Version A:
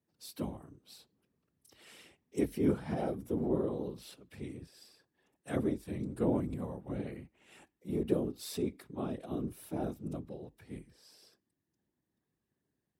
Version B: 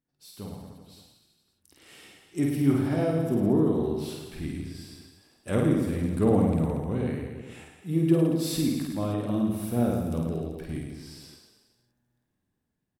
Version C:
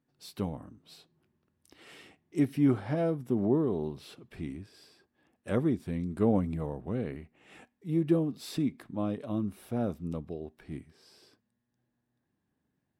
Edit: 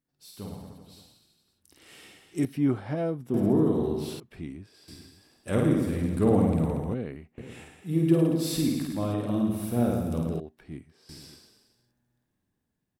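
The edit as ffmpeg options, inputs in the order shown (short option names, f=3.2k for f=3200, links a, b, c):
-filter_complex "[2:a]asplit=4[a][b][c][d];[1:a]asplit=5[e][f][g][h][i];[e]atrim=end=2.452[j];[a]atrim=start=2.448:end=3.342[k];[f]atrim=start=3.338:end=4.202[l];[b]atrim=start=4.198:end=4.882[m];[g]atrim=start=4.878:end=6.942[n];[c]atrim=start=6.938:end=7.382[o];[h]atrim=start=7.378:end=10.402[p];[d]atrim=start=10.398:end=11.092[q];[i]atrim=start=11.088[r];[j][k]acrossfade=d=0.004:c1=hsin:c2=hsin[s];[s][l]acrossfade=d=0.004:c1=hsin:c2=hsin[t];[t][m]acrossfade=d=0.004:c1=hsin:c2=hsin[u];[u][n]acrossfade=d=0.004:c1=hsin:c2=hsin[v];[v][o]acrossfade=d=0.004:c1=hsin:c2=hsin[w];[w][p]acrossfade=d=0.004:c1=hsin:c2=hsin[x];[x][q]acrossfade=d=0.004:c1=hsin:c2=hsin[y];[y][r]acrossfade=d=0.004:c1=hsin:c2=hsin"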